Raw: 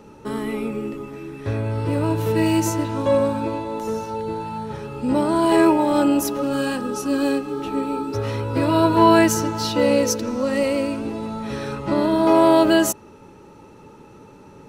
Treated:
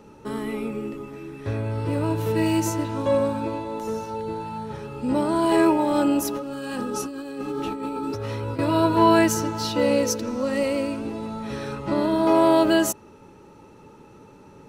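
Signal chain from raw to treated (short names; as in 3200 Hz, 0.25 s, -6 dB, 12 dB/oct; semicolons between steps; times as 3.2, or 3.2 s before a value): 6.3–8.59 negative-ratio compressor -27 dBFS, ratio -1; gain -3 dB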